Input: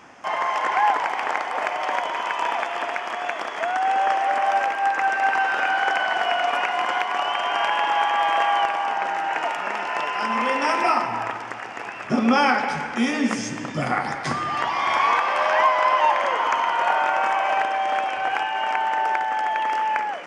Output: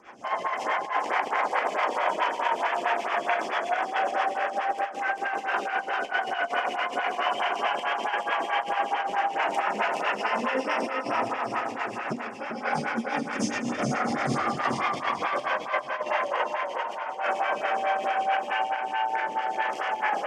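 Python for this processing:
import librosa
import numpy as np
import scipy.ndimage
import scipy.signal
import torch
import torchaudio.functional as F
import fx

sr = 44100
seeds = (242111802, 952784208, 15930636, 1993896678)

y = fx.rev_schroeder(x, sr, rt60_s=0.5, comb_ms=30, drr_db=-3.0)
y = fx.rotary_switch(y, sr, hz=7.5, then_hz=0.6, switch_at_s=15.25)
y = fx.over_compress(y, sr, threshold_db=-23.0, ratio=-0.5)
y = fx.echo_feedback(y, sr, ms=393, feedback_pct=38, wet_db=-4)
y = fx.stagger_phaser(y, sr, hz=4.6)
y = y * librosa.db_to_amplitude(-3.0)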